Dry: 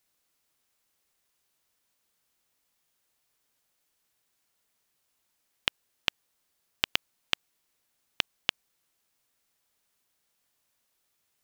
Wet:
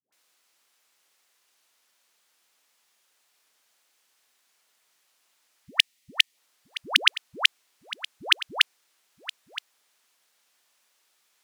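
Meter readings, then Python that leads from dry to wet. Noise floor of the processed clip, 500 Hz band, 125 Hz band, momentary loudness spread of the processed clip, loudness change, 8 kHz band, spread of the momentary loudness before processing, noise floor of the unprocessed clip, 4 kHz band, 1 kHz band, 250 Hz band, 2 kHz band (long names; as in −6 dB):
−70 dBFS, +5.0 dB, can't be measured, 19 LU, +8.5 dB, +9.5 dB, 3 LU, −77 dBFS, +10.0 dB, +8.0 dB, +0.5 dB, +10.0 dB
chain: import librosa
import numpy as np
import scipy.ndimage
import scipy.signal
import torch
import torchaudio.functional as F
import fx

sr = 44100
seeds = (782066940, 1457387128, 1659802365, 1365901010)

p1 = fx.weighting(x, sr, curve='A')
p2 = fx.spec_box(p1, sr, start_s=5.58, length_s=0.7, low_hz=280.0, high_hz=1800.0, gain_db=-12)
p3 = fx.dispersion(p2, sr, late='highs', ms=125.0, hz=560.0)
p4 = np.clip(p3, -10.0 ** (-13.0 / 20.0), 10.0 ** (-13.0 / 20.0))
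p5 = p4 + fx.echo_single(p4, sr, ms=969, db=-16.0, dry=0)
y = F.gain(torch.from_numpy(p5), 9.0).numpy()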